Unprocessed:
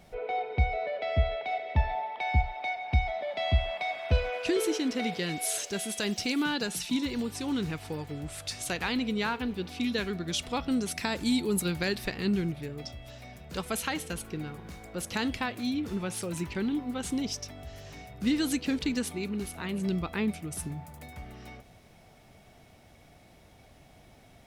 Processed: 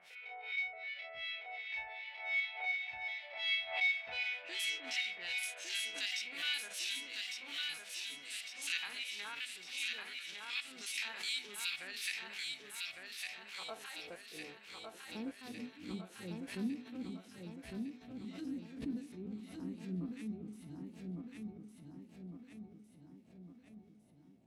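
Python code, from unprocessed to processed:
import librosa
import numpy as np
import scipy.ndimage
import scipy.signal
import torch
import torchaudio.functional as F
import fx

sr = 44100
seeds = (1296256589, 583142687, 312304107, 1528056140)

p1 = fx.spec_steps(x, sr, hold_ms=50)
p2 = F.preemphasis(torch.from_numpy(p1), 0.9).numpy()
p3 = fx.hum_notches(p2, sr, base_hz=50, count=6)
p4 = fx.harmonic_tremolo(p3, sr, hz=2.7, depth_pct=100, crossover_hz=1400.0)
p5 = 10.0 ** (-36.0 / 20.0) * np.tanh(p4 / 10.0 ** (-36.0 / 20.0))
p6 = fx.filter_sweep_bandpass(p5, sr, from_hz=2400.0, to_hz=220.0, start_s=12.25, end_s=15.59, q=1.9)
p7 = p6 + fx.echo_feedback(p6, sr, ms=1156, feedback_pct=54, wet_db=-4, dry=0)
p8 = fx.pre_swell(p7, sr, db_per_s=96.0)
y = p8 * librosa.db_to_amplitude(15.0)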